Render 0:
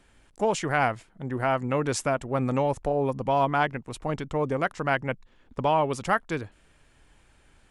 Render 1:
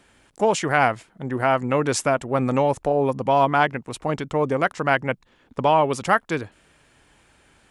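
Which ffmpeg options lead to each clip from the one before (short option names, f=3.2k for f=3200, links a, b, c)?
-af "highpass=f=130:p=1,volume=5.5dB"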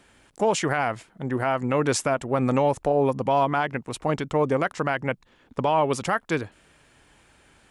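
-af "alimiter=limit=-12dB:level=0:latency=1:release=89"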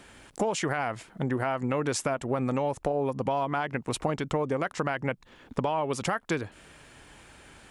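-af "acompressor=threshold=-31dB:ratio=6,volume=5.5dB"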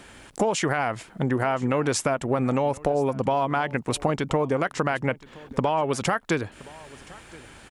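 -af "aecho=1:1:1021:0.0794,volume=4.5dB"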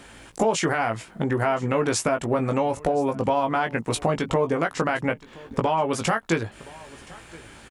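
-filter_complex "[0:a]asplit=2[a][b];[b]adelay=18,volume=-5.5dB[c];[a][c]amix=inputs=2:normalize=0"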